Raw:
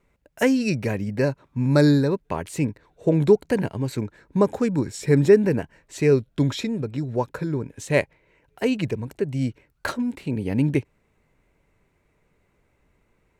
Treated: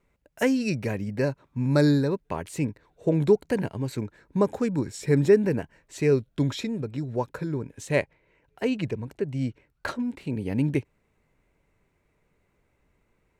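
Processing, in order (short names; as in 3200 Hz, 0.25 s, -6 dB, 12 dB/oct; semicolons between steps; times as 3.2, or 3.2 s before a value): 7.96–10.21 high shelf 8300 Hz -9 dB; gain -3.5 dB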